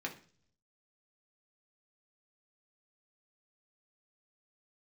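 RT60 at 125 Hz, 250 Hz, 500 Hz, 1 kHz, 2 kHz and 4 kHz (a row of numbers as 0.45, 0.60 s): 0.95, 0.70, 0.50, 0.40, 0.45, 0.55 s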